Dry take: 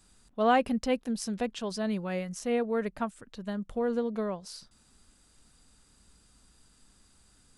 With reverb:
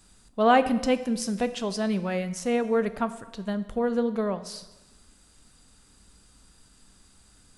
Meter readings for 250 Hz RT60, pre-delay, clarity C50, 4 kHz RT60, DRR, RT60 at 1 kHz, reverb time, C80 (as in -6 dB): 1.1 s, 5 ms, 13.5 dB, 1.0 s, 11.5 dB, 1.1 s, 1.1 s, 15.0 dB